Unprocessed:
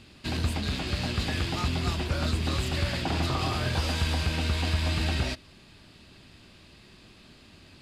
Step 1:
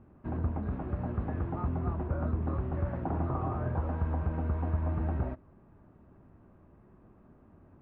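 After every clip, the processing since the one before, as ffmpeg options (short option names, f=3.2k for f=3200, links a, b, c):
-af "lowpass=f=1.2k:w=0.5412,lowpass=f=1.2k:w=1.3066,volume=-3dB"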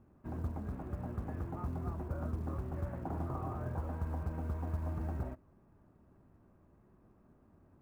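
-af "acrusher=bits=9:mode=log:mix=0:aa=0.000001,volume=-6.5dB"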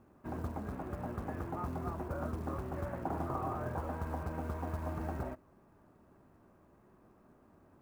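-af "lowshelf=f=220:g=-11,volume=6.5dB"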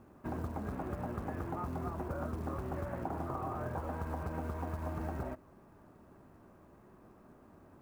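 -af "acompressor=threshold=-39dB:ratio=6,volume=4.5dB"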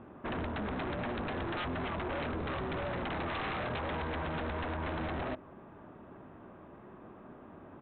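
-af "lowshelf=f=94:g=-9.5,aresample=8000,aeval=exprs='0.0106*(abs(mod(val(0)/0.0106+3,4)-2)-1)':c=same,aresample=44100,volume=8.5dB"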